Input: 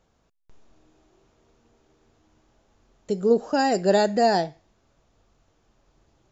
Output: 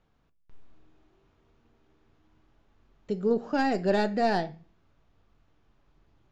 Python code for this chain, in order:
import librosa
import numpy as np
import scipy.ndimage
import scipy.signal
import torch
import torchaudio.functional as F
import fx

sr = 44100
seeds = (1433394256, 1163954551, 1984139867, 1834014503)

y = fx.tracing_dist(x, sr, depth_ms=0.04)
y = scipy.signal.sosfilt(scipy.signal.butter(2, 3400.0, 'lowpass', fs=sr, output='sos'), y)
y = fx.peak_eq(y, sr, hz=570.0, db=-5.5, octaves=1.3)
y = fx.room_shoebox(y, sr, seeds[0], volume_m3=210.0, walls='furnished', distance_m=0.33)
y = F.gain(torch.from_numpy(y), -2.0).numpy()